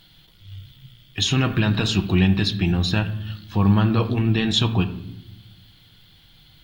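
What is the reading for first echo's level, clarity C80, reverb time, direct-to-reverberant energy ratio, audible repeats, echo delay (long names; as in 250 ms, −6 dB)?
no echo audible, 15.0 dB, 0.85 s, 6.0 dB, no echo audible, no echo audible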